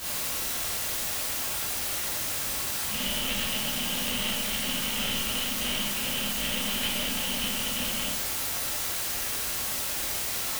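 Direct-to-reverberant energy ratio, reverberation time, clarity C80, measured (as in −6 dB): −9.5 dB, 0.70 s, 5.5 dB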